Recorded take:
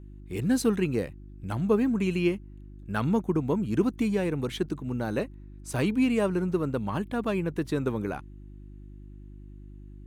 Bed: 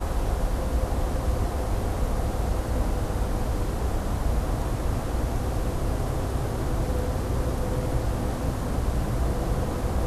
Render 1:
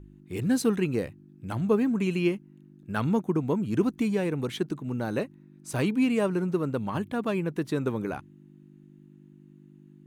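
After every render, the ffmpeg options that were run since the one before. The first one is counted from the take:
-af "bandreject=f=50:t=h:w=4,bandreject=f=100:t=h:w=4"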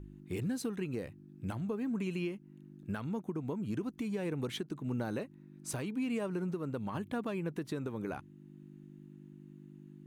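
-af "acompressor=threshold=-29dB:ratio=6,alimiter=level_in=3dB:limit=-24dB:level=0:latency=1:release=481,volume=-3dB"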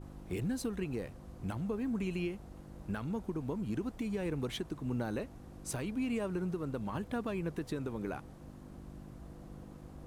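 -filter_complex "[1:a]volume=-26dB[a];[0:a][a]amix=inputs=2:normalize=0"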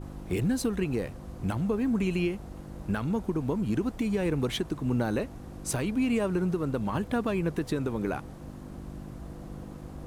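-af "volume=8dB"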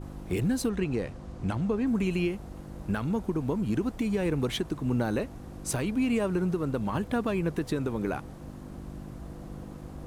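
-filter_complex "[0:a]asettb=1/sr,asplit=3[a][b][c];[a]atrim=end=0.694[d];[b]atrim=start=0.69:end=1.87,asetpts=PTS-STARTPTS,afade=t=in:d=0.004:c=qsin,afade=t=out:st=1.176:d=0.004:c=qsin,lowpass=7.7k[e];[c]atrim=start=1.866[f];[d][e]acrossfade=d=0.004:c1=hsin:c2=qsin[g];[g][f]acrossfade=d=0.004:c1=qsin:c2=hsin"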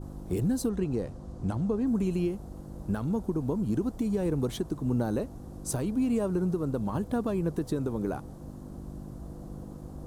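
-af "equalizer=f=2.3k:t=o:w=1.4:g=-13.5"

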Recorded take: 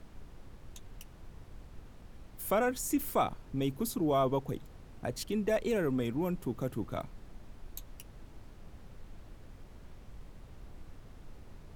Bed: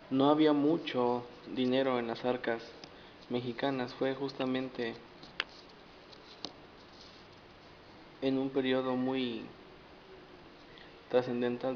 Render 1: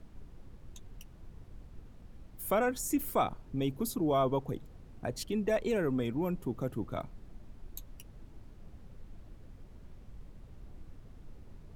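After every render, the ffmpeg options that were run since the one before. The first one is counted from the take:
-af "afftdn=nr=6:nf=-53"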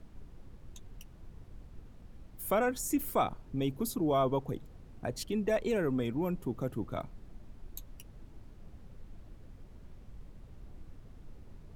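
-af anull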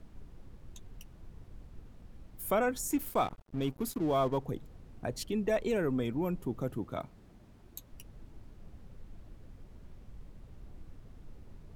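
-filter_complex "[0:a]asettb=1/sr,asplit=3[a][b][c];[a]atrim=end=2.914[d];[b]atrim=start=2.91:end=4.38,asetpts=PTS-STARTPTS,afade=t=in:d=0.004:c=qsin,afade=t=out:st=1.466:d=0.004:c=qsin,aeval=exprs='sgn(val(0))*max(abs(val(0))-0.00422,0)':c=same[e];[c]atrim=start=4.376[f];[d][e]acrossfade=d=0.004:c1=hsin:c2=qsin[g];[g][f]acrossfade=d=0.004:c1=qsin:c2=hsin,asettb=1/sr,asplit=3[h][i][j];[h]atrim=end=6.784[k];[i]atrim=start=6.78:end=7.93,asetpts=PTS-STARTPTS,afade=t=in:d=0.004:c=qsin,afade=t=out:st=1.146:d=0.004:c=qsin,highpass=f=100:p=1[l];[j]atrim=start=7.926[m];[k][l]acrossfade=d=0.004:c1=hsin:c2=qsin[n];[n][m]acrossfade=d=0.004:c1=qsin:c2=hsin"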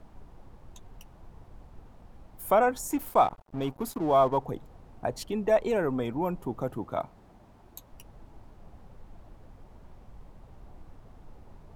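-af "equalizer=f=840:w=1.1:g=11"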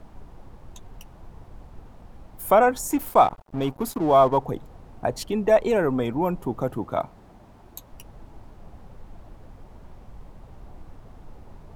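-af "volume=5.5dB"

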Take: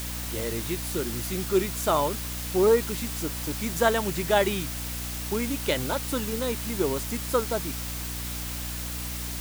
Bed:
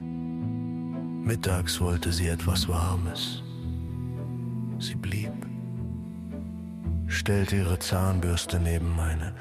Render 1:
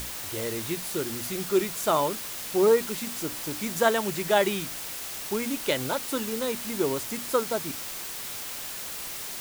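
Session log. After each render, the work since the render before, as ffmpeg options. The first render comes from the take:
-af "bandreject=f=60:t=h:w=6,bandreject=f=120:t=h:w=6,bandreject=f=180:t=h:w=6,bandreject=f=240:t=h:w=6,bandreject=f=300:t=h:w=6"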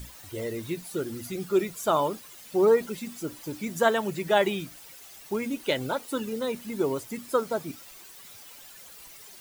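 -af "afftdn=nr=14:nf=-36"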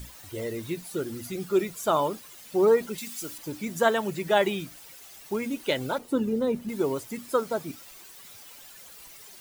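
-filter_complex "[0:a]asettb=1/sr,asplit=3[a][b][c];[a]atrim=end=2.984[d];[b]atrim=start=2.98:end=3.38,asetpts=PTS-STARTPTS,afade=t=in:d=0.004:c=qsin,afade=t=out:st=0.396:d=0.004:c=qsin,tiltshelf=f=1.5k:g=-7.5[e];[c]atrim=start=3.376[f];[d][e]acrossfade=d=0.004:c1=hsin:c2=qsin[g];[g][f]acrossfade=d=0.004:c1=qsin:c2=hsin,asettb=1/sr,asplit=3[h][i][j];[h]atrim=end=5.984[k];[i]atrim=start=5.98:end=6.69,asetpts=PTS-STARTPTS,afade=t=in:d=0.004:c=qsin,afade=t=out:st=0.706:d=0.004:c=qsin,tiltshelf=f=810:g=8[l];[j]atrim=start=6.686[m];[k][l]acrossfade=d=0.004:c1=hsin:c2=qsin[n];[n][m]acrossfade=d=0.004:c1=qsin:c2=hsin"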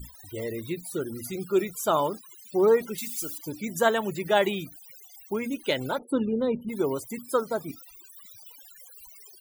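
-af "afftfilt=real='re*gte(hypot(re,im),0.00631)':imag='im*gte(hypot(re,im),0.00631)':win_size=1024:overlap=0.75,highshelf=f=9.1k:g=8"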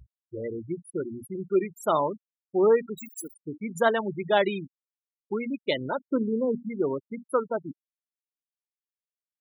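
-af "afftfilt=real='re*gte(hypot(re,im),0.0562)':imag='im*gte(hypot(re,im),0.0562)':win_size=1024:overlap=0.75,highpass=100"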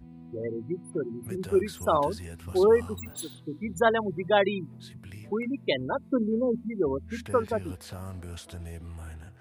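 -filter_complex "[1:a]volume=-14dB[a];[0:a][a]amix=inputs=2:normalize=0"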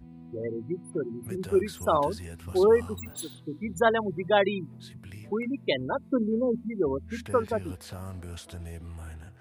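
-af anull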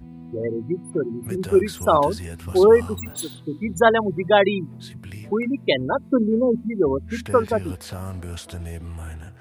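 -af "volume=7dB,alimiter=limit=-2dB:level=0:latency=1"

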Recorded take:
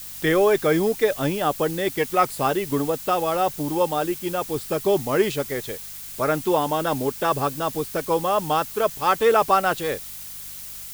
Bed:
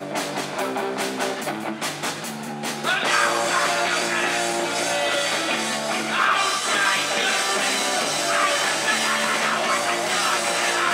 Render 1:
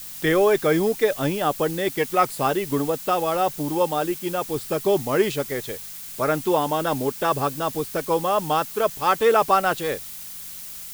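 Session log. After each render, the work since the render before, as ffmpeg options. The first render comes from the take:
-af "bandreject=f=50:t=h:w=4,bandreject=f=100:t=h:w=4"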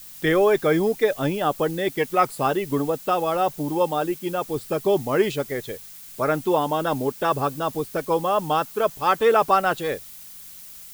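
-af "afftdn=nr=6:nf=-37"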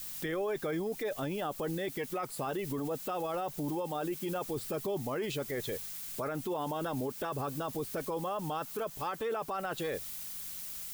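-af "acompressor=threshold=-26dB:ratio=4,alimiter=level_in=3dB:limit=-24dB:level=0:latency=1:release=14,volume=-3dB"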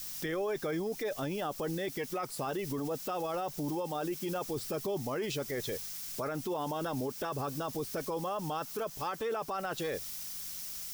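-af "equalizer=f=5.5k:w=3:g=7.5"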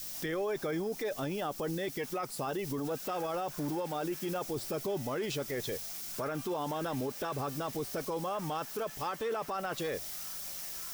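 -filter_complex "[1:a]volume=-33.5dB[a];[0:a][a]amix=inputs=2:normalize=0"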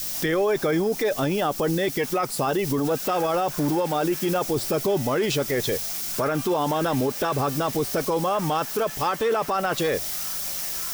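-af "volume=11.5dB"

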